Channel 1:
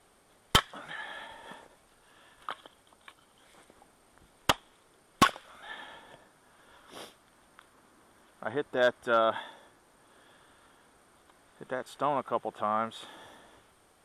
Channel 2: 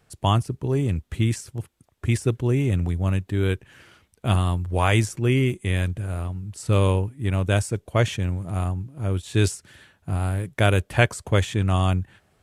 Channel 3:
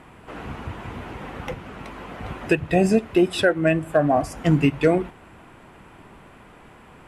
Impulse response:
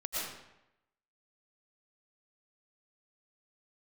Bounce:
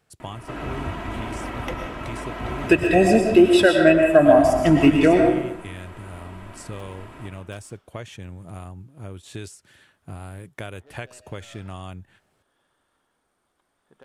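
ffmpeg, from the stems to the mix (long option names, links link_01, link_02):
-filter_complex "[0:a]aeval=exprs='0.0708*(abs(mod(val(0)/0.0708+3,4)-2)-1)':channel_layout=same,adelay=2300,volume=-12dB,asplit=2[link_01][link_02];[link_02]volume=-20.5dB[link_03];[1:a]lowshelf=frequency=110:gain=-8.5,acompressor=threshold=-28dB:ratio=4,volume=-4.5dB,asplit=2[link_04][link_05];[2:a]aecho=1:1:3.1:0.44,adelay=200,volume=-1.5dB,asplit=2[link_06][link_07];[link_07]volume=-3dB[link_08];[link_05]apad=whole_len=721034[link_09];[link_01][link_09]sidechaincompress=threshold=-42dB:ratio=8:attack=12:release=653[link_10];[3:a]atrim=start_sample=2205[link_11];[link_03][link_08]amix=inputs=2:normalize=0[link_12];[link_12][link_11]afir=irnorm=-1:irlink=0[link_13];[link_10][link_04][link_06][link_13]amix=inputs=4:normalize=0"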